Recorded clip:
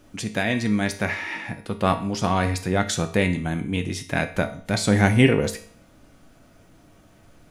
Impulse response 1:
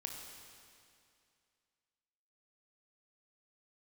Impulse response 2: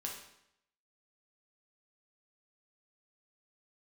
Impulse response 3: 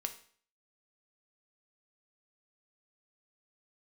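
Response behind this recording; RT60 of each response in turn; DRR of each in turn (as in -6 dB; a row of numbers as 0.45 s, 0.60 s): 3; 2.4 s, 0.75 s, 0.50 s; 1.5 dB, -2.0 dB, 6.0 dB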